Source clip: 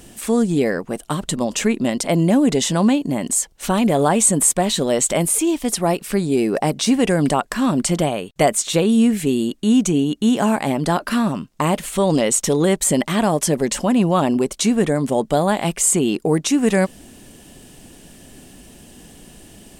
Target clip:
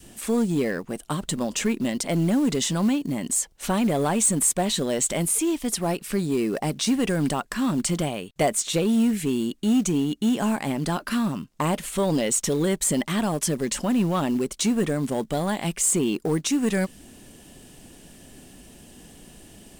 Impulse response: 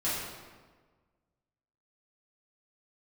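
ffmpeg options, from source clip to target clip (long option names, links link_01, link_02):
-filter_complex "[0:a]asplit=2[link_01][link_02];[link_02]asoftclip=type=hard:threshold=-15.5dB,volume=-3.5dB[link_03];[link_01][link_03]amix=inputs=2:normalize=0,acrusher=bits=7:mode=log:mix=0:aa=0.000001,adynamicequalizer=threshold=0.0355:dfrequency=630:dqfactor=1.1:tfrequency=630:tqfactor=1.1:attack=5:release=100:ratio=0.375:range=3:mode=cutabove:tftype=bell,volume=-8.5dB"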